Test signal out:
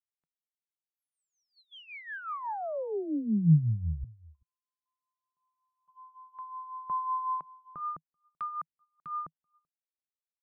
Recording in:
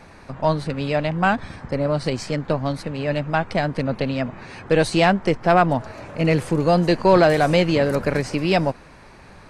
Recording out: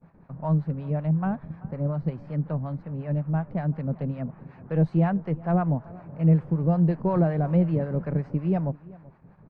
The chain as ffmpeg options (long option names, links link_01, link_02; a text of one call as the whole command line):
ffmpeg -i in.wav -filter_complex "[0:a]acrossover=split=660[link_01][link_02];[link_01]aeval=exprs='val(0)*(1-0.7/2+0.7/2*cos(2*PI*5.4*n/s))':channel_layout=same[link_03];[link_02]aeval=exprs='val(0)*(1-0.7/2-0.7/2*cos(2*PI*5.4*n/s))':channel_layout=same[link_04];[link_03][link_04]amix=inputs=2:normalize=0,lowpass=1200,equalizer=frequency=160:width=2.1:gain=14.5,asplit=2[link_05][link_06];[link_06]adelay=384.8,volume=-21dB,highshelf=frequency=4000:gain=-8.66[link_07];[link_05][link_07]amix=inputs=2:normalize=0,agate=range=-20dB:threshold=-45dB:ratio=16:detection=peak,volume=-8.5dB" out.wav